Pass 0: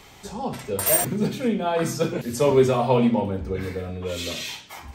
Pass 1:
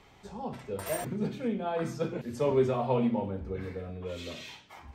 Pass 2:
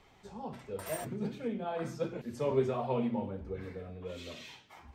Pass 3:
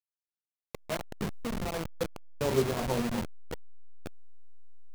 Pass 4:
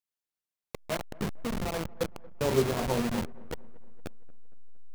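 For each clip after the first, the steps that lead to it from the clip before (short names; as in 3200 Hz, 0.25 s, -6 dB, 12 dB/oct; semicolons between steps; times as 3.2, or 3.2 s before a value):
LPF 2300 Hz 6 dB/oct; gain -8 dB
flange 1.4 Hz, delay 1.2 ms, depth 8.2 ms, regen +68%
level-crossing sampler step -29.5 dBFS; gain +3 dB
dark delay 0.231 s, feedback 53%, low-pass 1500 Hz, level -22 dB; gain +1.5 dB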